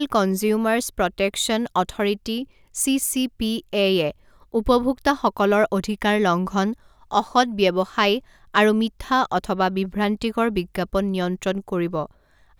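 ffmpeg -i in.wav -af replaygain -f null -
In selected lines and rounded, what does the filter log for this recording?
track_gain = +1.5 dB
track_peak = 0.496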